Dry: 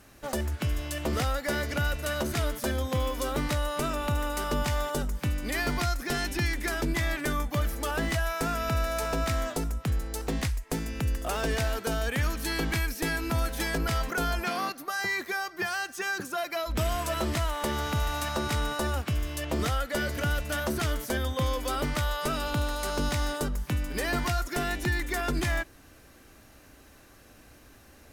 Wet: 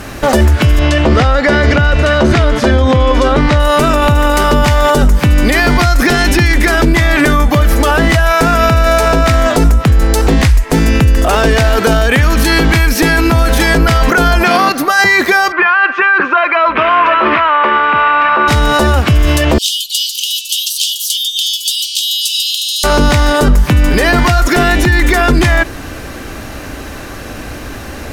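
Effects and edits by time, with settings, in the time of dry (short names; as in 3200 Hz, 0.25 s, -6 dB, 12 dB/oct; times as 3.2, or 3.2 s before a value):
0.79–3.6 air absorption 96 m
15.52–18.48 speaker cabinet 430–2700 Hz, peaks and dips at 480 Hz -3 dB, 710 Hz -5 dB, 1100 Hz +9 dB, 1500 Hz +4 dB, 2500 Hz +6 dB
19.58–22.84 steep high-pass 2900 Hz 96 dB/oct
whole clip: high shelf 6400 Hz -9 dB; maximiser +30 dB; gain -1 dB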